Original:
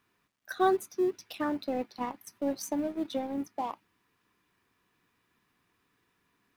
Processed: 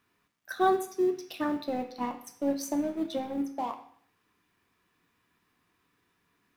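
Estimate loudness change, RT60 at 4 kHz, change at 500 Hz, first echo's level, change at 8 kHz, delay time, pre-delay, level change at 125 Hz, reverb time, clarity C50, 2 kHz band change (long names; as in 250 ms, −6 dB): +1.5 dB, 0.55 s, +1.0 dB, no echo audible, +1.0 dB, no echo audible, 8 ms, +1.0 dB, 0.55 s, 11.0 dB, +1.0 dB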